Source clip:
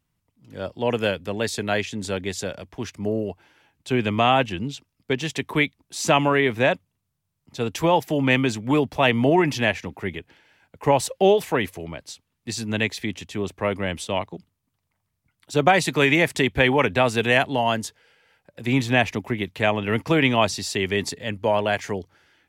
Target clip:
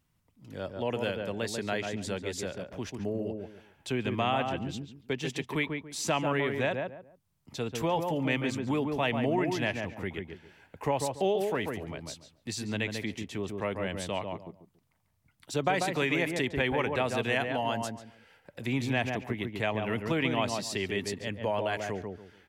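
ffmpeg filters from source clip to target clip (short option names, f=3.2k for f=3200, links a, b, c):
-filter_complex "[0:a]asplit=2[a][b];[b]adelay=141,lowpass=f=1.3k:p=1,volume=-4.5dB,asplit=2[c][d];[d]adelay=141,lowpass=f=1.3k:p=1,volume=0.2,asplit=2[e][f];[f]adelay=141,lowpass=f=1.3k:p=1,volume=0.2[g];[a][c][e][g]amix=inputs=4:normalize=0,acompressor=threshold=-47dB:ratio=1.5,volume=1dB"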